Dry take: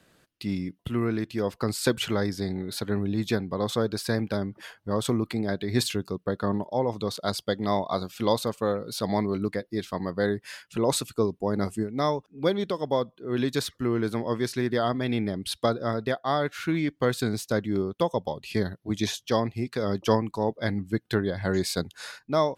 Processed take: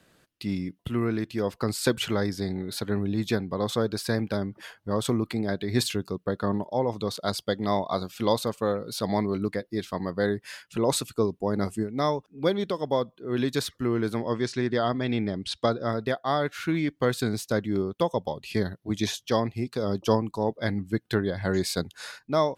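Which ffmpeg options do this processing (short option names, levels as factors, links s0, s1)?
-filter_complex "[0:a]asettb=1/sr,asplit=3[s0][s1][s2];[s0]atrim=end=14.224[s3];[s1]atrim=start=14.22:end=15.88,asetpts=PTS-STARTPTS,afade=t=in:d=0.004:c=qsin,afade=t=out:st=1.656:d=0.004:c=qsin,lowpass=f=7900:w=0.5412,lowpass=f=7900:w=1.3066[s4];[s2]atrim=start=15.876[s5];[s3][s4]acrossfade=d=0.004:c1=hsin:c2=qsin[s6];[s6][s5]acrossfade=d=0.004:c1=qsin:c2=hsin,asettb=1/sr,asplit=3[s7][s8][s9];[s7]atrim=end=19.644[s10];[s8]atrim=start=19.64:end=20.46,asetpts=PTS-STARTPTS,afade=t=in:d=0.004:c=qsin,afade=t=out:st=0.816:d=0.004:c=qsin,equalizer=f=1900:w=2:g=-9[s11];[s9]atrim=start=20.456[s12];[s10][s11]acrossfade=d=0.004:c1=hsin:c2=qsin[s13];[s13][s12]acrossfade=d=0.004:c1=qsin:c2=hsin"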